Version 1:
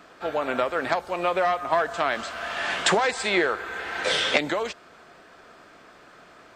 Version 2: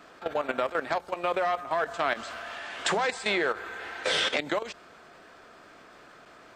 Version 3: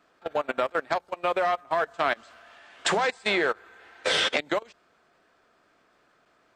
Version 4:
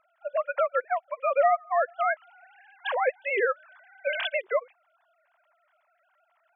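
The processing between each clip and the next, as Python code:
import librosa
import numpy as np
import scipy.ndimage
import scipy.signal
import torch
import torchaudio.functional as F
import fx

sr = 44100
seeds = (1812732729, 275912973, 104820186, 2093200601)

y1 = fx.hum_notches(x, sr, base_hz=60, count=3)
y1 = fx.level_steps(y1, sr, step_db=13)
y2 = fx.upward_expand(y1, sr, threshold_db=-36.0, expansion=2.5)
y2 = y2 * librosa.db_to_amplitude(4.0)
y3 = fx.sine_speech(y2, sr)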